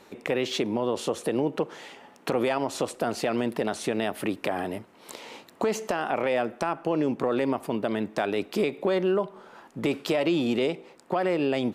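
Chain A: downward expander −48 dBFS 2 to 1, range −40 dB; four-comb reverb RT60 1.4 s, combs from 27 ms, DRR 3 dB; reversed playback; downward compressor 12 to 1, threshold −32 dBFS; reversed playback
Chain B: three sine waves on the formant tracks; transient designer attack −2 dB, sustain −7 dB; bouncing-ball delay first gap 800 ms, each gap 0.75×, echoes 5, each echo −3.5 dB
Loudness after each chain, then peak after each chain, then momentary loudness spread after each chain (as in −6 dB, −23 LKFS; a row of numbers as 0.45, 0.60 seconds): −37.0, −27.0 LKFS; −20.5, −11.0 dBFS; 4, 8 LU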